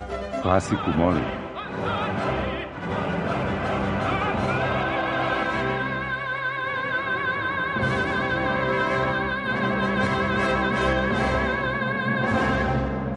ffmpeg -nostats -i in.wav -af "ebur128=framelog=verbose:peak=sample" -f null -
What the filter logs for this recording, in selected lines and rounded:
Integrated loudness:
  I:         -24.3 LUFS
  Threshold: -34.3 LUFS
Loudness range:
  LRA:         3.0 LU
  Threshold: -44.3 LUFS
  LRA low:   -25.9 LUFS
  LRA high:  -23.0 LUFS
Sample peak:
  Peak:       -6.1 dBFS